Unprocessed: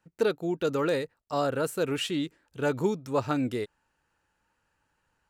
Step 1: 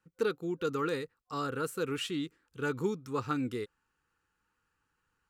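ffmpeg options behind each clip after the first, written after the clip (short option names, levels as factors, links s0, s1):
-af "superequalizer=8b=0.251:9b=0.631:10b=1.58,volume=0.562"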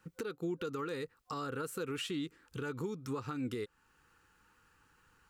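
-af "acompressor=threshold=0.0112:ratio=5,alimiter=level_in=7.08:limit=0.0631:level=0:latency=1:release=403,volume=0.141,volume=3.76"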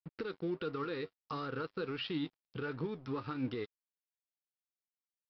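-af "flanger=delay=6.3:depth=4.3:regen=78:speed=1.4:shape=sinusoidal,aresample=11025,aeval=exprs='sgn(val(0))*max(abs(val(0))-0.00112,0)':c=same,aresample=44100,volume=1.88"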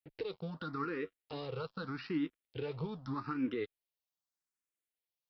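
-filter_complex "[0:a]asplit=2[s0][s1];[s1]afreqshift=0.82[s2];[s0][s2]amix=inputs=2:normalize=1,volume=1.41"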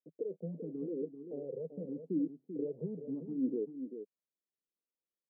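-af "asuperpass=centerf=310:order=12:qfactor=0.7,aecho=1:1:389:0.355,volume=1.19"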